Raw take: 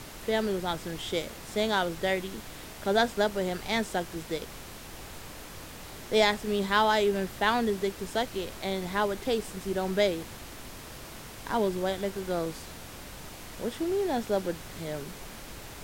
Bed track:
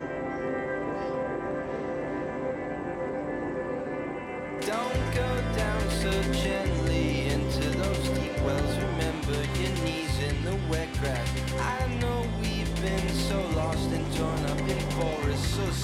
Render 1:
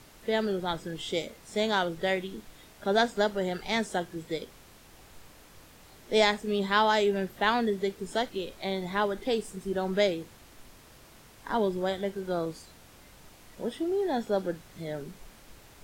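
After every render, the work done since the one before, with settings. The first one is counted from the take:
noise reduction from a noise print 10 dB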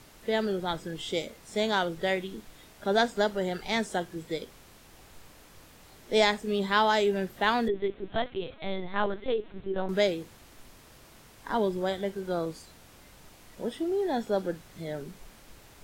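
0:07.68–0:09.89: linear-prediction vocoder at 8 kHz pitch kept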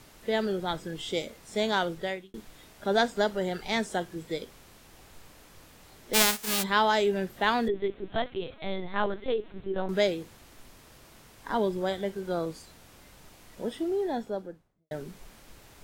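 0:01.91–0:02.34: fade out linear
0:06.13–0:06.62: spectral envelope flattened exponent 0.1
0:13.83–0:14.91: fade out and dull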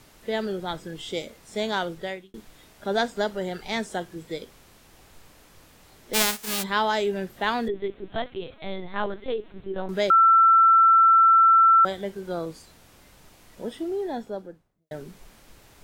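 0:10.10–0:11.85: beep over 1,340 Hz −12.5 dBFS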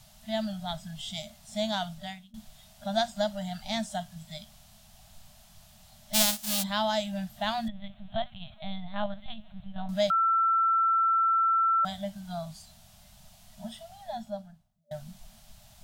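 brick-wall band-stop 230–590 Hz
flat-topped bell 1,500 Hz −8.5 dB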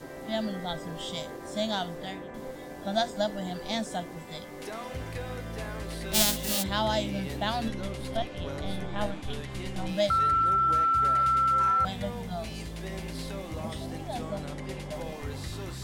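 mix in bed track −9 dB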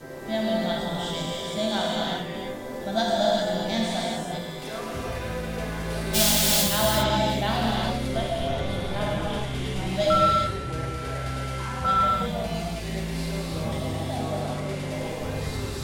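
reverb whose tail is shaped and stops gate 430 ms flat, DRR −5 dB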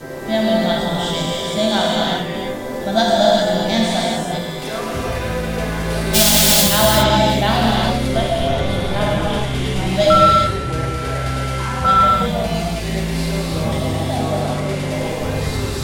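level +9 dB
brickwall limiter −1 dBFS, peak gain reduction 2.5 dB

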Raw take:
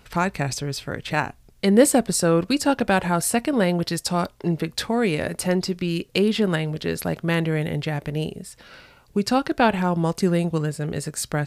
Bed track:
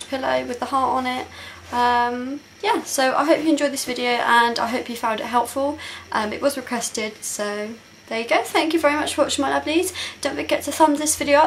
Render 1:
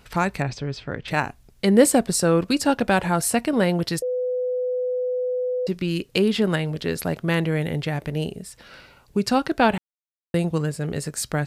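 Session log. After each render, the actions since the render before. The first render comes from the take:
0:00.42–0:01.08: high-frequency loss of the air 170 metres
0:04.02–0:05.67: beep over 501 Hz −21.5 dBFS
0:09.78–0:10.34: silence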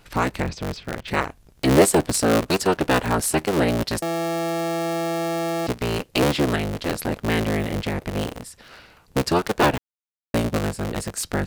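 sub-harmonics by changed cycles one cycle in 3, inverted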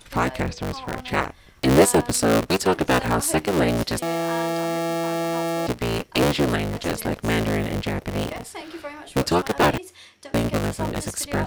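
mix in bed track −17.5 dB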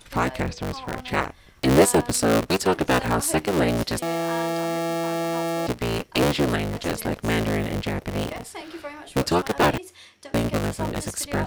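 level −1 dB

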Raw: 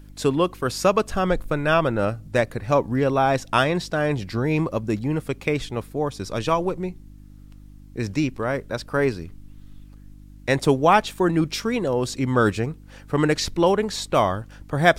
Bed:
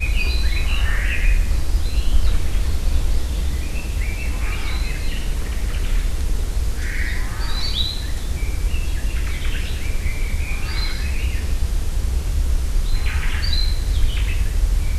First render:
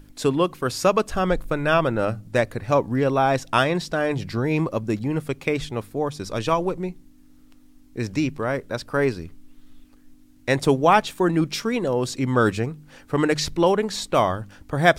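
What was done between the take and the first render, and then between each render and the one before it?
hum removal 50 Hz, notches 4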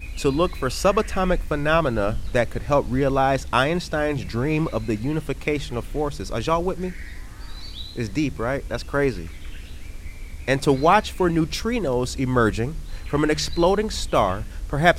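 mix in bed −14 dB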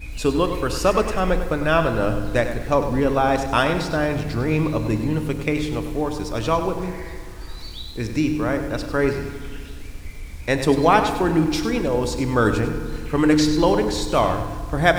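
feedback delay network reverb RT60 2.1 s, low-frequency decay 1.25×, high-frequency decay 0.6×, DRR 9 dB
feedback echo at a low word length 99 ms, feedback 35%, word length 7 bits, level −10 dB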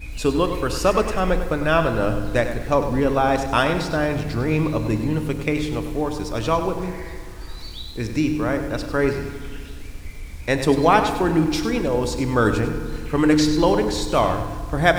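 no processing that can be heard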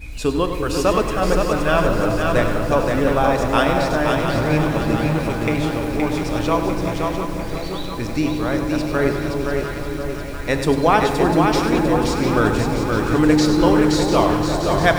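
delay that swaps between a low-pass and a high-pass 349 ms, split 940 Hz, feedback 83%, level −7 dB
feedback echo at a low word length 521 ms, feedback 35%, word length 7 bits, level −4 dB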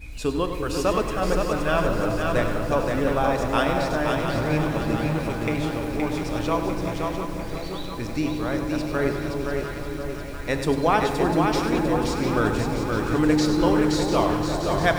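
level −5 dB

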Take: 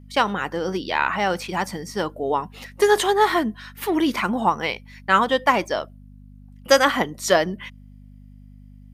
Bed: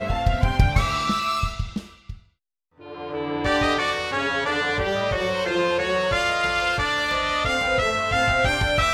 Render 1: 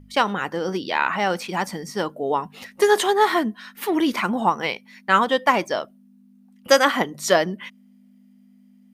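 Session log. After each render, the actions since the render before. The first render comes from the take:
hum removal 50 Hz, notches 3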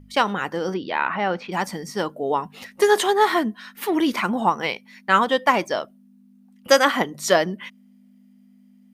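0:00.74–0:01.52: high-frequency loss of the air 250 metres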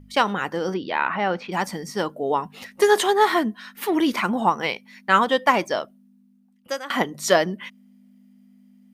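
0:05.77–0:06.90: fade out, to −21.5 dB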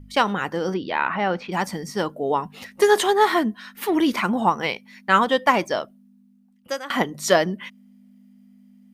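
low-shelf EQ 130 Hz +6 dB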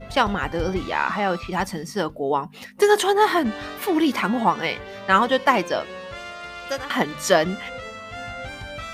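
mix in bed −13.5 dB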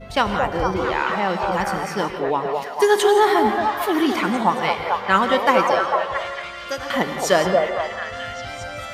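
echo through a band-pass that steps 224 ms, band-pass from 590 Hz, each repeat 0.7 octaves, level 0 dB
reverb whose tail is shaped and stops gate 190 ms rising, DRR 8.5 dB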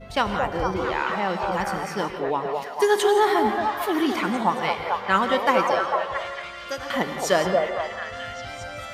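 level −3.5 dB

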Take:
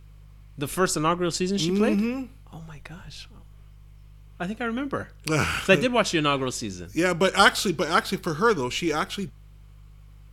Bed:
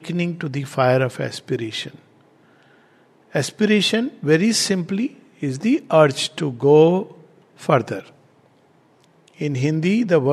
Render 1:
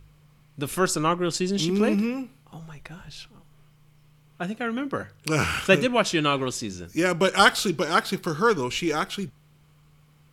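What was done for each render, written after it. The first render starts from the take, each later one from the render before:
hum removal 50 Hz, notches 2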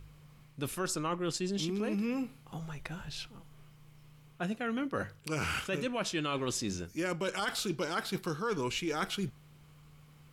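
brickwall limiter −14 dBFS, peak gain reduction 11.5 dB
reversed playback
downward compressor 6 to 1, threshold −31 dBFS, peak gain reduction 12 dB
reversed playback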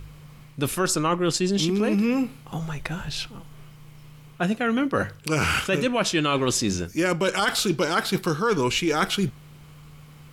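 level +11 dB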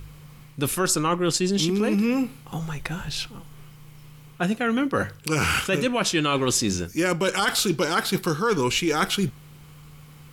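high-shelf EQ 8,200 Hz +5.5 dB
notch filter 630 Hz, Q 12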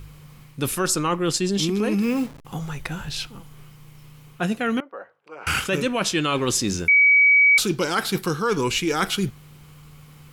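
0:02.02–0:02.45: hold until the input has moved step −37 dBFS
0:04.80–0:05.47: four-pole ladder band-pass 790 Hz, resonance 35%
0:06.88–0:07.58: beep over 2,270 Hz −11.5 dBFS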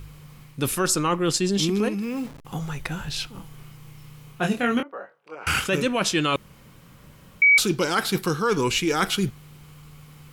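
0:01.88–0:02.40: downward compressor, threshold −25 dBFS
0:03.32–0:05.35: double-tracking delay 25 ms −4 dB
0:06.36–0:07.42: fill with room tone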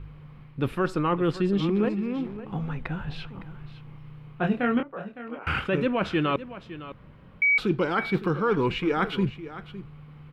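high-frequency loss of the air 470 metres
single-tap delay 560 ms −14.5 dB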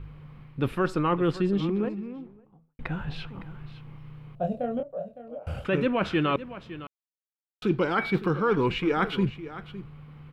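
0:01.18–0:02.79: fade out and dull
0:04.35–0:05.65: drawn EQ curve 110 Hz 0 dB, 380 Hz −13 dB, 600 Hz +10 dB, 930 Hz −16 dB, 2,100 Hz −24 dB, 3,100 Hz −15 dB, 7,700 Hz −2 dB
0:06.87–0:07.62: silence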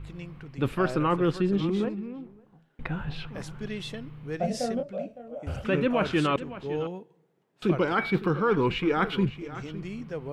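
mix in bed −19.5 dB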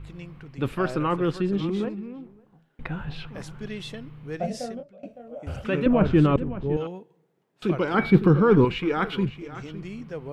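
0:04.41–0:05.03: fade out, to −22.5 dB
0:05.86–0:06.77: spectral tilt −4 dB per octave
0:07.94–0:08.65: low-shelf EQ 450 Hz +12 dB

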